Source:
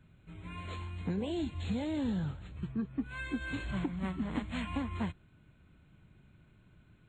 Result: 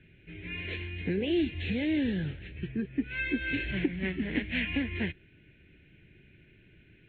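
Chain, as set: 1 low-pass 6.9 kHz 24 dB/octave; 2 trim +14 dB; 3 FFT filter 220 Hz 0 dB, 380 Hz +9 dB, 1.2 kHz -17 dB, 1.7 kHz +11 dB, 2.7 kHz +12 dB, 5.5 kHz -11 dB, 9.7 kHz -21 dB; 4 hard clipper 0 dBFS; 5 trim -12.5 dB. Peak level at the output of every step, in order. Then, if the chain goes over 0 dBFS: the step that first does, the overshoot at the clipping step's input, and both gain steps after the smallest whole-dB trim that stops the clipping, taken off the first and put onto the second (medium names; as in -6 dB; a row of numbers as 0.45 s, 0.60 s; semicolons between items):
-23.5 dBFS, -9.5 dBFS, -3.0 dBFS, -3.0 dBFS, -15.5 dBFS; nothing clips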